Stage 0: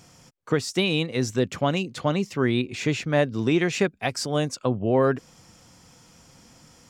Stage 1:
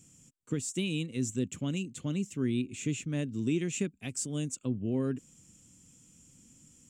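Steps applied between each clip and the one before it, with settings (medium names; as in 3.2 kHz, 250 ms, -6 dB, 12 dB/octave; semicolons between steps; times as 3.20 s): FFT filter 120 Hz 0 dB, 270 Hz +3 dB, 730 Hz -18 dB, 1.9 kHz -11 dB, 2.8 kHz -2 dB, 4.9 kHz -11 dB, 7.5 kHz +11 dB, 12 kHz -1 dB; trim -7.5 dB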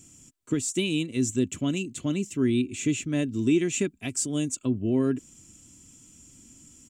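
comb 3 ms, depth 43%; trim +6 dB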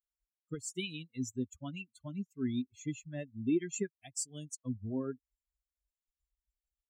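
expander on every frequency bin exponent 3; trim -5 dB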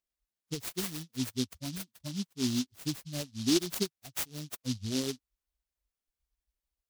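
delay time shaken by noise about 4.4 kHz, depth 0.24 ms; trim +3.5 dB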